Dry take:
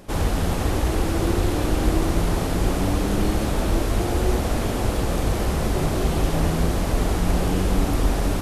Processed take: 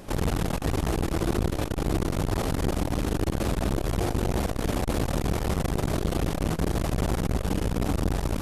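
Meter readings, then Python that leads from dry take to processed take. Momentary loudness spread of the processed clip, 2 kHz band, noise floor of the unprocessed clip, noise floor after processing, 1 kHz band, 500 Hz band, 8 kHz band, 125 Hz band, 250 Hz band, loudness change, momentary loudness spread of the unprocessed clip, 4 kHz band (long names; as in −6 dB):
1 LU, −5.0 dB, −25 dBFS, −34 dBFS, −5.0 dB, −4.5 dB, −5.0 dB, −4.0 dB, −4.0 dB, −4.5 dB, 2 LU, −5.0 dB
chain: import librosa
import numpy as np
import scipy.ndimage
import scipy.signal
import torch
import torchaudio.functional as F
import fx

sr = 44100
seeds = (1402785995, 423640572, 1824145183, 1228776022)

y = fx.rider(x, sr, range_db=10, speed_s=0.5)
y = fx.transformer_sat(y, sr, knee_hz=290.0)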